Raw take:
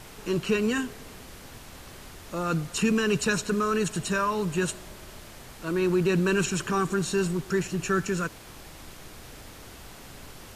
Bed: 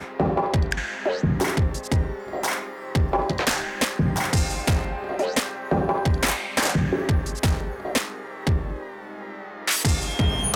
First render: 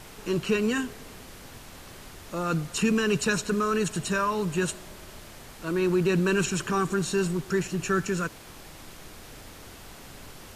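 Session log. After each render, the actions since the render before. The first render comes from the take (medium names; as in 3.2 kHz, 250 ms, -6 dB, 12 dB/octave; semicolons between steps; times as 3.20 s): de-hum 60 Hz, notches 2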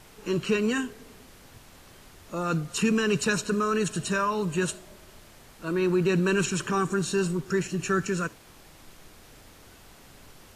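noise print and reduce 6 dB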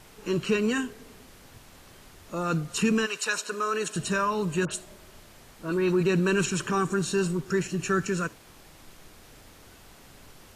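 3.05–3.94 s: high-pass 910 Hz -> 320 Hz; 4.65–6.03 s: phase dispersion highs, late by 61 ms, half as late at 2.4 kHz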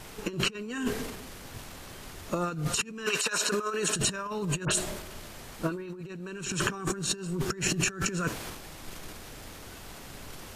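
transient shaper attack +4 dB, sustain +8 dB; compressor with a negative ratio -30 dBFS, ratio -0.5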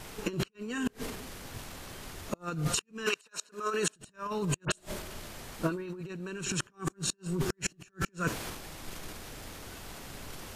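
inverted gate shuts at -17 dBFS, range -32 dB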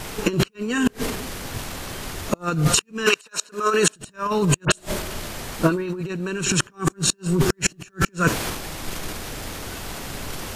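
trim +12 dB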